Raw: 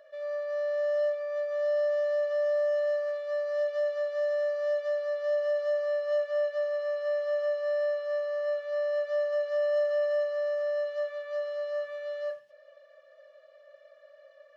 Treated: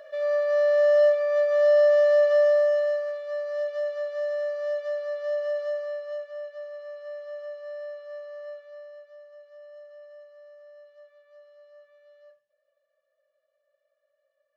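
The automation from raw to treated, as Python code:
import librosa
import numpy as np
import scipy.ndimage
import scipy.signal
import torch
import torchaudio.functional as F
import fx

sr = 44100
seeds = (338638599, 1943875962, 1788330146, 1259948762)

y = fx.gain(x, sr, db=fx.line((2.36, 9.0), (3.15, 0.0), (5.62, 0.0), (6.35, -8.5), (8.46, -8.5), (9.18, -20.0)))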